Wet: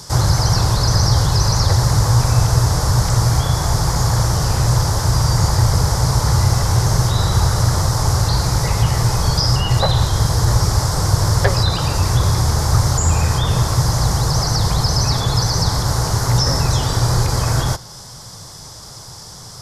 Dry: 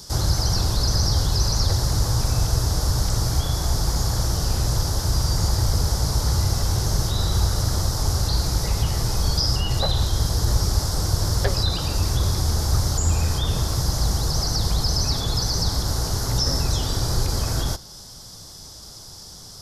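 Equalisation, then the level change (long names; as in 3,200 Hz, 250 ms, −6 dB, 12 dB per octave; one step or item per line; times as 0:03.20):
octave-band graphic EQ 125/500/1,000/2,000/8,000 Hz +11/+5/+9/+8/+6 dB
0.0 dB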